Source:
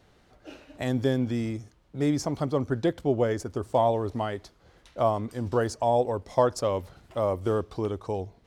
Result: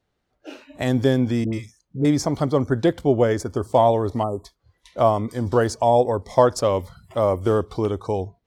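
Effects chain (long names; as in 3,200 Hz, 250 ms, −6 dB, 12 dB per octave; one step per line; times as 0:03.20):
0:01.44–0:02.05: all-pass dispersion highs, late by 90 ms, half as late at 810 Hz
noise reduction from a noise print of the clip's start 21 dB
0:04.23–0:04.45: time-frequency box erased 1,300–6,900 Hz
level +6.5 dB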